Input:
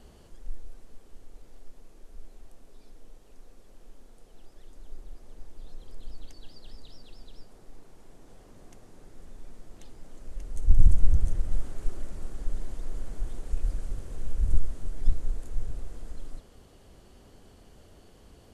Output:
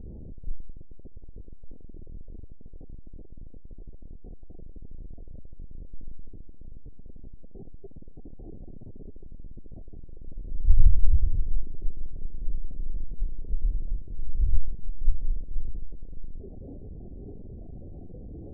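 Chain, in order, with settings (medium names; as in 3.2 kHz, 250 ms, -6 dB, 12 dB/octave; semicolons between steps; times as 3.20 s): jump at every zero crossing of -24.5 dBFS; spectral noise reduction 8 dB; Gaussian low-pass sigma 21 samples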